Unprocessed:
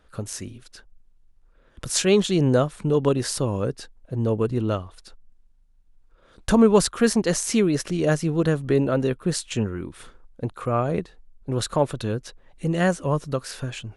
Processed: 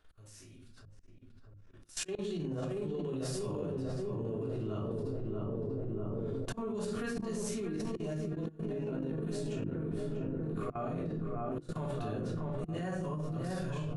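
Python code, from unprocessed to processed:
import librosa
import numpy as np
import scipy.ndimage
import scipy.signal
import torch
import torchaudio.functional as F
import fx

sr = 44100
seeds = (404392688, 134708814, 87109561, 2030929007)

p1 = fx.hpss(x, sr, part='percussive', gain_db=-15)
p2 = p1 + fx.echo_filtered(p1, sr, ms=641, feedback_pct=71, hz=1500.0, wet_db=-6, dry=0)
p3 = fx.room_shoebox(p2, sr, seeds[0], volume_m3=580.0, walls='furnished', distance_m=3.3)
p4 = fx.auto_swell(p3, sr, attack_ms=395.0)
p5 = fx.over_compress(p4, sr, threshold_db=-19.0, ratio=-0.5)
p6 = fx.low_shelf(p5, sr, hz=500.0, db=-4.5)
p7 = fx.hum_notches(p6, sr, base_hz=50, count=7)
y = fx.level_steps(p7, sr, step_db=18)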